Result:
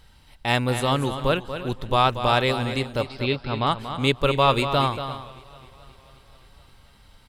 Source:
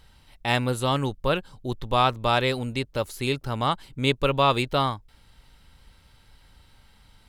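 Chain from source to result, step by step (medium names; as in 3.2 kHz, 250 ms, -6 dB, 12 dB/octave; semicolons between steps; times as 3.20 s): 3.01–3.67 s: steep low-pass 5.2 kHz 96 dB/octave; multi-tap echo 235/345 ms -10/-16 dB; modulated delay 264 ms, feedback 68%, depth 69 cents, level -23.5 dB; trim +1.5 dB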